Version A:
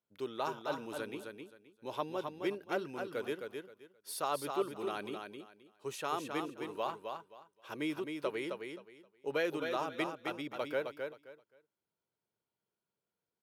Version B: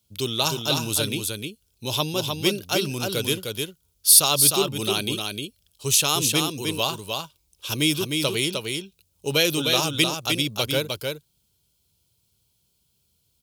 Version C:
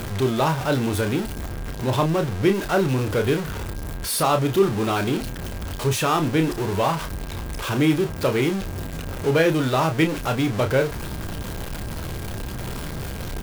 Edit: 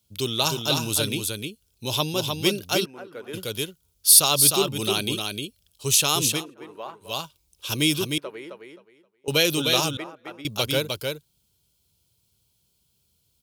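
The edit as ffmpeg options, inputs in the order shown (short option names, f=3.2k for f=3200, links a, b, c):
-filter_complex "[0:a]asplit=4[a][b][c][d];[1:a]asplit=5[e][f][g][h][i];[e]atrim=end=2.86[j];[a]atrim=start=2.84:end=3.35[k];[f]atrim=start=3.33:end=6.45[l];[b]atrim=start=6.29:end=7.16[m];[g]atrim=start=7:end=8.182[n];[c]atrim=start=8.178:end=9.282[o];[h]atrim=start=9.278:end=9.972[p];[d]atrim=start=9.968:end=10.452[q];[i]atrim=start=10.448[r];[j][k]acrossfade=d=0.02:c1=tri:c2=tri[s];[s][l]acrossfade=d=0.02:c1=tri:c2=tri[t];[t][m]acrossfade=d=0.16:c1=tri:c2=tri[u];[u][n]acrossfade=d=0.16:c1=tri:c2=tri[v];[v][o]acrossfade=d=0.004:c1=hsin:c2=hsin[w];[w][p]acrossfade=d=0.004:c1=hsin:c2=hsin[x];[x][q]acrossfade=d=0.004:c1=hsin:c2=hsin[y];[y][r]acrossfade=d=0.004:c1=hsin:c2=hsin"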